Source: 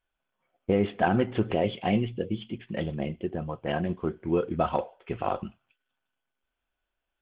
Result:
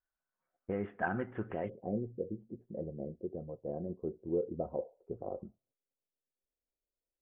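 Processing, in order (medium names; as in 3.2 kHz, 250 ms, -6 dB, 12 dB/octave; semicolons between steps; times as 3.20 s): four-pole ladder low-pass 1.9 kHz, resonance 50%, from 1.68 s 590 Hz; tape noise reduction on one side only decoder only; trim -3 dB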